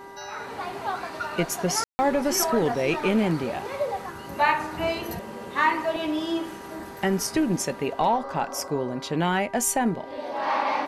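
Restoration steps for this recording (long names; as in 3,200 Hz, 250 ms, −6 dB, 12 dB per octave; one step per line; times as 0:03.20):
hum removal 396.4 Hz, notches 5
notch filter 960 Hz, Q 30
ambience match 0:01.84–0:01.99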